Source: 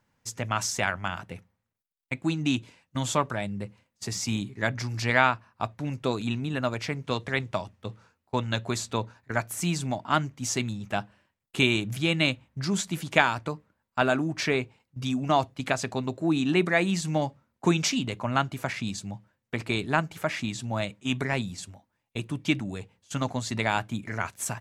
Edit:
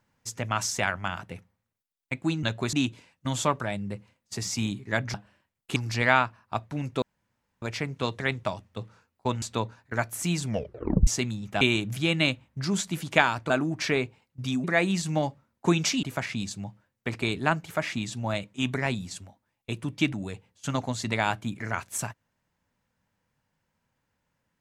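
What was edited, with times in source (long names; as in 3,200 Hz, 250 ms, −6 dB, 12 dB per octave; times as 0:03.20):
0:06.10–0:06.70: fill with room tone
0:08.50–0:08.80: move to 0:02.43
0:09.82: tape stop 0.63 s
0:10.99–0:11.61: move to 0:04.84
0:13.50–0:14.08: remove
0:15.22–0:16.63: remove
0:18.02–0:18.50: remove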